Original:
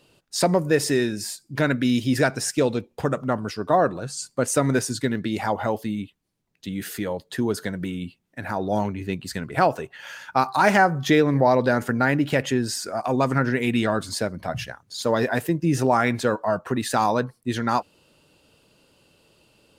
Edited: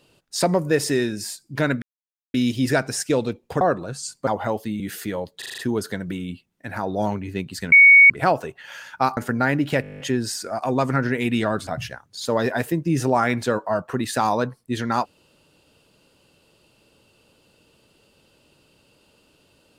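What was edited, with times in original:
1.82 s: insert silence 0.52 s
3.09–3.75 s: delete
4.41–5.46 s: delete
5.99–6.73 s: delete
7.31 s: stutter 0.04 s, 6 plays
9.45 s: add tone 2.23 kHz -6.5 dBFS 0.38 s
10.52–11.77 s: delete
12.42 s: stutter 0.02 s, 10 plays
14.09–14.44 s: delete

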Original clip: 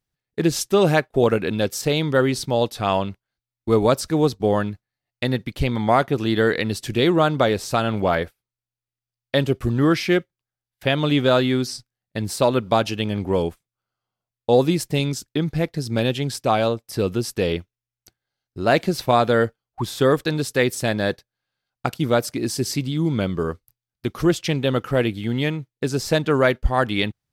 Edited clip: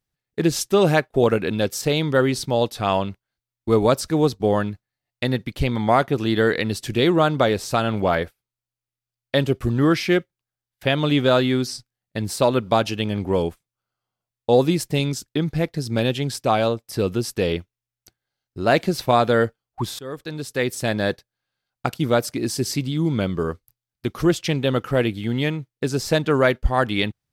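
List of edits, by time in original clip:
19.99–20.97 s: fade in, from -23 dB

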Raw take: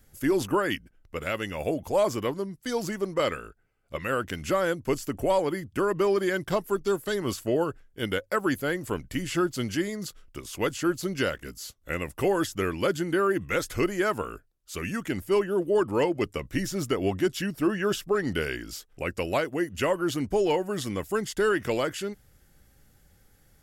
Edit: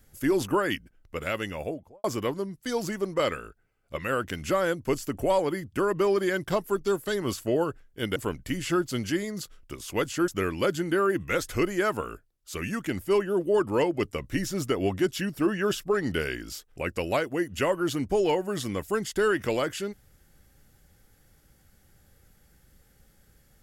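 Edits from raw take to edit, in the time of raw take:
1.42–2.04 s: studio fade out
8.16–8.81 s: delete
10.93–12.49 s: delete

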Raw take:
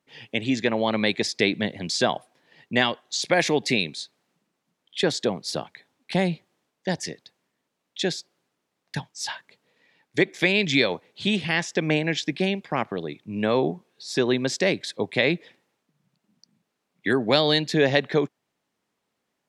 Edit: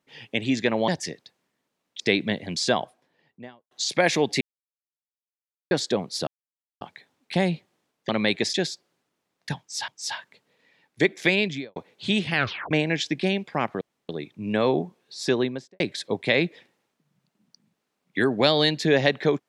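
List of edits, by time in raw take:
0.88–1.33 s: swap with 6.88–8.00 s
1.93–3.04 s: studio fade out
3.74–5.04 s: mute
5.60 s: insert silence 0.54 s
9.05–9.34 s: loop, 2 plays
10.50–10.93 s: studio fade out
11.52 s: tape stop 0.36 s
12.98 s: insert room tone 0.28 s
14.17–14.69 s: studio fade out

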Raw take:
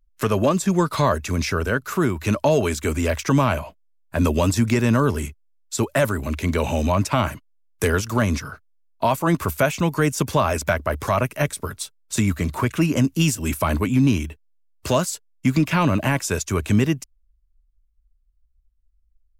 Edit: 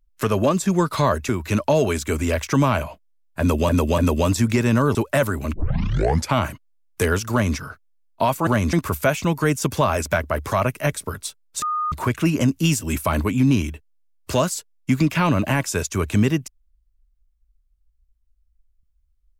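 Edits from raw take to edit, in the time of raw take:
1.29–2.05 s: delete
4.16–4.45 s: loop, 3 plays
5.13–5.77 s: delete
6.36 s: tape start 0.78 s
8.13–8.39 s: copy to 9.29 s
12.18–12.48 s: bleep 1.23 kHz -20.5 dBFS

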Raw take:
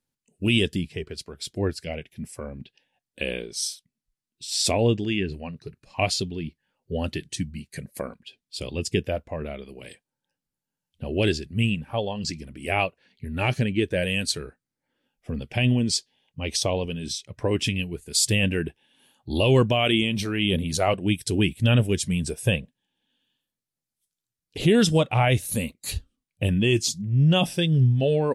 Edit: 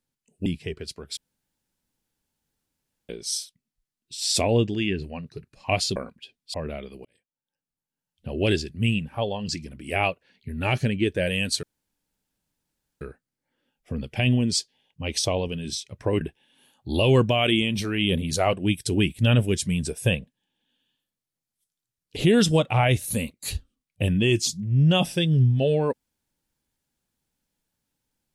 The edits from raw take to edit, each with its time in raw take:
0.46–0.76 s: delete
1.47–3.39 s: room tone
6.26–8.00 s: delete
8.58–9.30 s: delete
9.81–11.17 s: fade in
14.39 s: insert room tone 1.38 s
17.59–18.62 s: delete

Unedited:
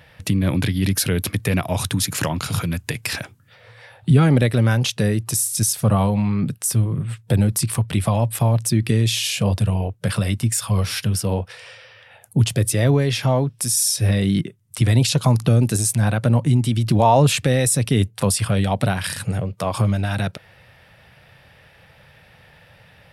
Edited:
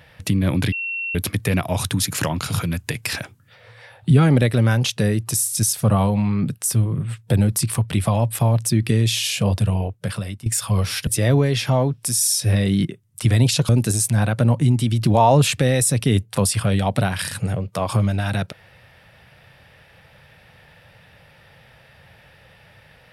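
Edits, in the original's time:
0.72–1.15 s: bleep 2.72 kHz -23.5 dBFS
9.79–10.46 s: fade out, to -15.5 dB
11.07–12.63 s: delete
15.25–15.54 s: delete

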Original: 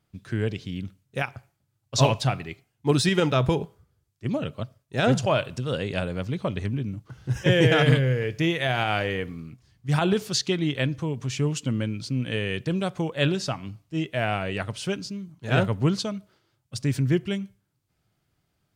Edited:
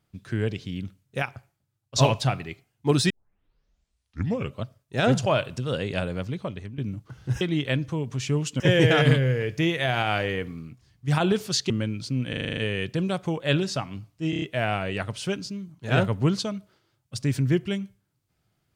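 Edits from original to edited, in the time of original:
1.20–1.96 s: fade out, to -7 dB
3.10 s: tape start 1.51 s
6.15–6.78 s: fade out linear, to -14 dB
10.51–11.70 s: move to 7.41 s
12.29 s: stutter 0.04 s, 8 plays
14.02 s: stutter 0.03 s, 5 plays

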